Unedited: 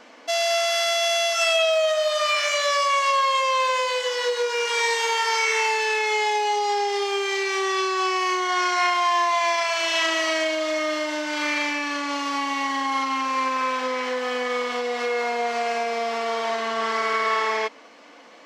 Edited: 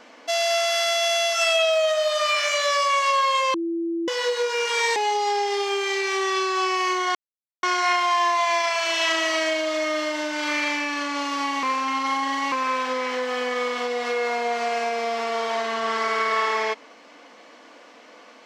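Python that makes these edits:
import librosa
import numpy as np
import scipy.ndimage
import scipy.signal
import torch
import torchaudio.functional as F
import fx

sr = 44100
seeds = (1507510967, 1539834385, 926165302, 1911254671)

y = fx.edit(x, sr, fx.bleep(start_s=3.54, length_s=0.54, hz=335.0, db=-23.0),
    fx.cut(start_s=4.96, length_s=1.42),
    fx.insert_silence(at_s=8.57, length_s=0.48),
    fx.reverse_span(start_s=12.57, length_s=0.89), tone=tone)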